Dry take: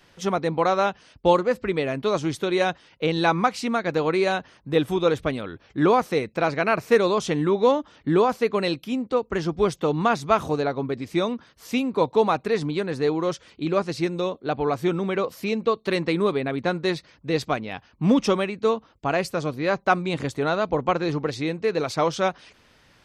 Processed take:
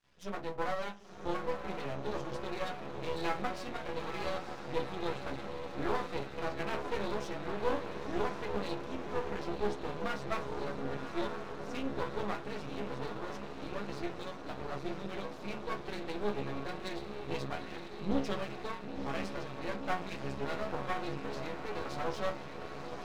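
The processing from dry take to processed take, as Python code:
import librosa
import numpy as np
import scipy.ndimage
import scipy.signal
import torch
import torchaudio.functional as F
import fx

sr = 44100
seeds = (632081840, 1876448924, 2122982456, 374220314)

y = scipy.signal.sosfilt(scipy.signal.butter(2, 6300.0, 'lowpass', fs=sr, output='sos'), x)
y = fx.low_shelf(y, sr, hz=79.0, db=9.0)
y = fx.stiff_resonator(y, sr, f0_hz=67.0, decay_s=0.34, stiffness=0.002)
y = fx.echo_diffused(y, sr, ms=964, feedback_pct=67, wet_db=-6.5)
y = np.maximum(y, 0.0)
y = y * 10.0 ** (-3.0 / 20.0)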